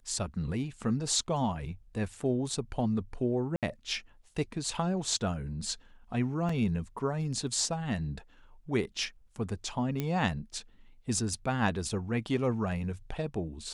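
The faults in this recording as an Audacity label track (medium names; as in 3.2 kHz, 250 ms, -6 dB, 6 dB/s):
3.560000	3.630000	dropout 67 ms
6.490000	6.490000	dropout 4.2 ms
10.000000	10.000000	pop -18 dBFS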